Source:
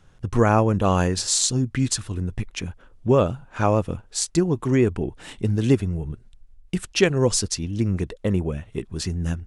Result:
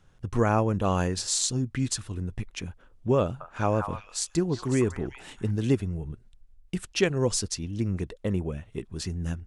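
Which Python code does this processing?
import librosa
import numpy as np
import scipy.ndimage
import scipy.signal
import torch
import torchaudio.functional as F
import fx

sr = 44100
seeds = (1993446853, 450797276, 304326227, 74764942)

y = fx.echo_stepped(x, sr, ms=184, hz=1200.0, octaves=1.4, feedback_pct=70, wet_db=-2.5, at=(3.22, 5.51))
y = F.gain(torch.from_numpy(y), -5.5).numpy()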